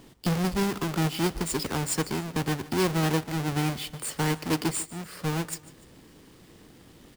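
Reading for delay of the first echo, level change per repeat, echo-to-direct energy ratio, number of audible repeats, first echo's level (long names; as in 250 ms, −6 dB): 148 ms, −6.5 dB, −18.0 dB, 2, −19.0 dB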